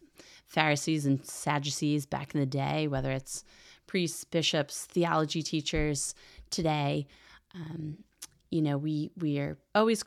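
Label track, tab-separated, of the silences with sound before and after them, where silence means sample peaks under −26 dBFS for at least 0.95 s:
7.000000	8.230000	silence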